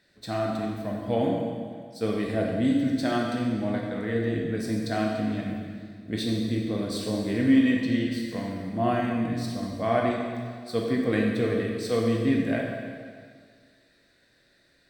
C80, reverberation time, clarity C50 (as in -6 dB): 3.0 dB, 1.9 s, 1.5 dB